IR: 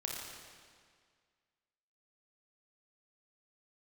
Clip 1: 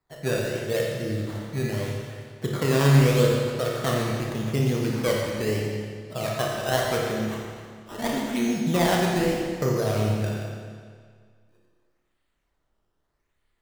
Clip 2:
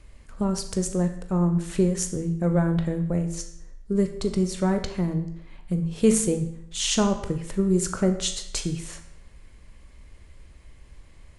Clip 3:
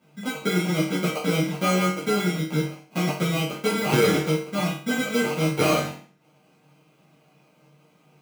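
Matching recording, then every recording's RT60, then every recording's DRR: 1; 1.9, 0.70, 0.45 seconds; −2.5, 6.5, −9.5 decibels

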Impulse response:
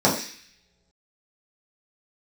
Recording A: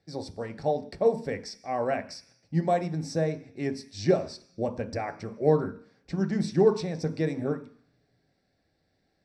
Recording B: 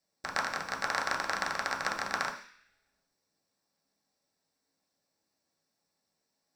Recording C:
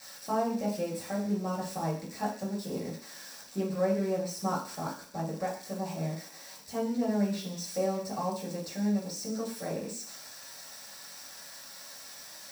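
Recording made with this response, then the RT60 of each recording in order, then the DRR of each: C; non-exponential decay, non-exponential decay, non-exponential decay; 7.0, −0.5, −7.0 decibels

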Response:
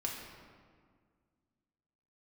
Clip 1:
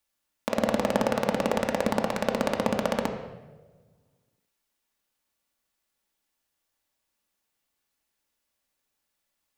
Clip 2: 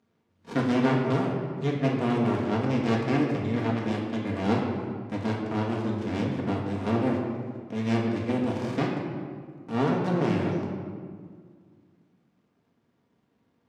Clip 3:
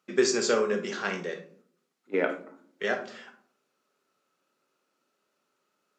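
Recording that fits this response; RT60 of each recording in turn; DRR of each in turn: 2; 1.3, 1.9, 0.55 seconds; 2.0, −2.0, 6.0 decibels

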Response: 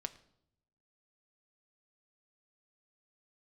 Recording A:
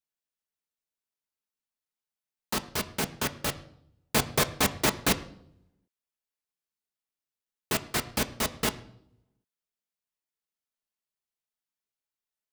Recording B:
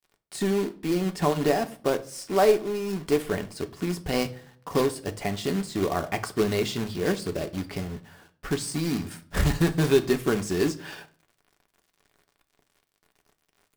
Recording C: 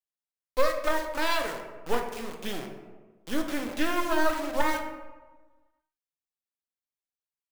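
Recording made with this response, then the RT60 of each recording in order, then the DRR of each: A; 0.75, 0.45, 1.3 seconds; 7.0, 6.0, 2.5 decibels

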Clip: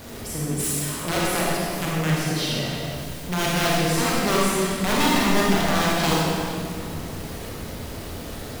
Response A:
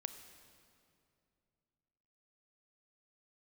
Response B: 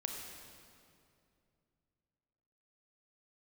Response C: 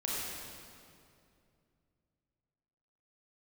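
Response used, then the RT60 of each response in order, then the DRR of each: C; 2.5, 2.5, 2.5 seconds; 9.0, 1.5, −6.0 decibels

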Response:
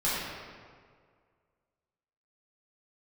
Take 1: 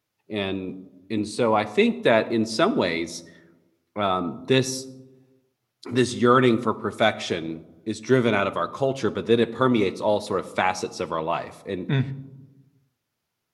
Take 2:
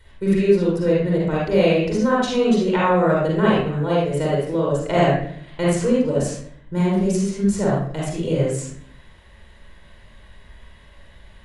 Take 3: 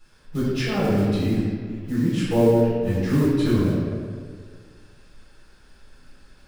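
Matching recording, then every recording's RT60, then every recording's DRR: 3; 1.1, 0.60, 1.9 seconds; 11.0, −6.0, −10.5 decibels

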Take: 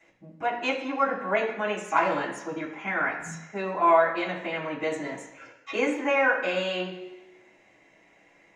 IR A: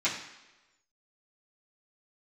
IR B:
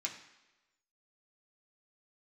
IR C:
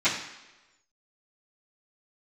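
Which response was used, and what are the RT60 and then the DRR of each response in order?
A; 1.1, 1.1, 1.1 seconds; −11.5, −1.5, −17.5 decibels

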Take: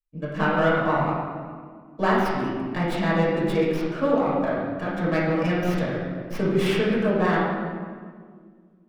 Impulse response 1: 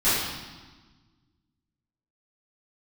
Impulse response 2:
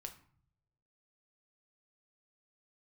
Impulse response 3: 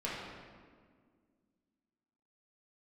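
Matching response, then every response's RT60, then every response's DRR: 3; 1.3, 0.55, 1.8 seconds; −15.0, 4.5, −7.5 decibels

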